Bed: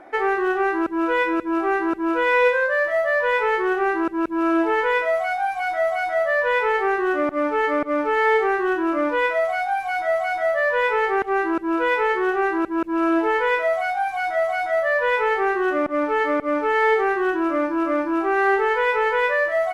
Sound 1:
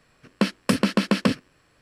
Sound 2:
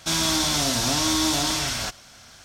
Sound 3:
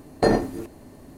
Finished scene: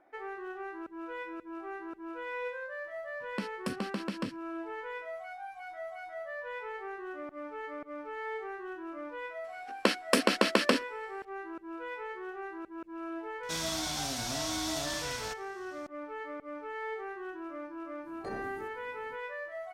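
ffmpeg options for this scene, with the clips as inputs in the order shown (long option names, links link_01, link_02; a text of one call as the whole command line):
ffmpeg -i bed.wav -i cue0.wav -i cue1.wav -i cue2.wav -filter_complex "[1:a]asplit=2[link_01][link_02];[0:a]volume=-20dB[link_03];[link_02]highpass=frequency=290:width=0.5412,highpass=frequency=290:width=1.3066[link_04];[3:a]alimiter=limit=-16.5dB:level=0:latency=1:release=79[link_05];[link_01]atrim=end=1.81,asetpts=PTS-STARTPTS,volume=-15.5dB,afade=type=in:duration=0.004:curve=hsin,afade=type=out:start_time=1.806:duration=0.004:curve=hsin,adelay=2970[link_06];[link_04]atrim=end=1.81,asetpts=PTS-STARTPTS,volume=-0.5dB,afade=type=in:duration=0.004:curve=hsin,afade=type=out:start_time=1.806:duration=0.004:curve=hsin,adelay=9440[link_07];[2:a]atrim=end=2.44,asetpts=PTS-STARTPTS,volume=-12.5dB,afade=type=in:duration=0.004:curve=hsin,afade=type=out:start_time=2.436:duration=0.004:curve=hsin,adelay=13430[link_08];[link_05]atrim=end=1.17,asetpts=PTS-STARTPTS,volume=-16dB,afade=type=in:duration=0.05,afade=type=out:start_time=1.12:duration=0.05,adelay=18020[link_09];[link_03][link_06][link_07][link_08][link_09]amix=inputs=5:normalize=0" out.wav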